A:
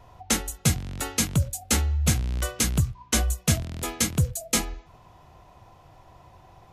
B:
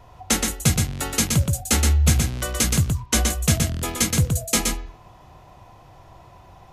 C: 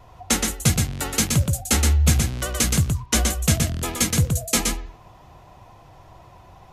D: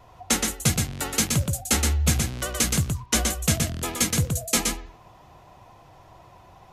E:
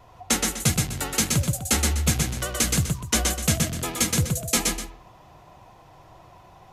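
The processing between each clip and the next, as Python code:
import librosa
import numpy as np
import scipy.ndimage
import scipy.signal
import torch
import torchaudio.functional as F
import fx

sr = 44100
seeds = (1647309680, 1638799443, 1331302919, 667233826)

y1 = x + 10.0 ** (-4.0 / 20.0) * np.pad(x, (int(122 * sr / 1000.0), 0))[:len(x)]
y1 = y1 * 10.0 ** (3.0 / 20.0)
y2 = fx.vibrato(y1, sr, rate_hz=13.0, depth_cents=53.0)
y3 = fx.low_shelf(y2, sr, hz=110.0, db=-6.0)
y3 = y3 * 10.0 ** (-1.5 / 20.0)
y4 = y3 + 10.0 ** (-9.0 / 20.0) * np.pad(y3, (int(128 * sr / 1000.0), 0))[:len(y3)]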